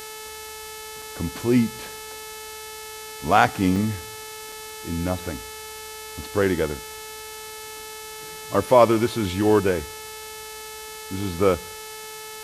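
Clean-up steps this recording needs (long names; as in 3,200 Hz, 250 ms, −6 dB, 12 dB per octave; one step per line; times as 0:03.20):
hum removal 434.8 Hz, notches 32
repair the gap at 0:01.02/0:03.76/0:04.52, 3 ms
noise reduction from a noise print 30 dB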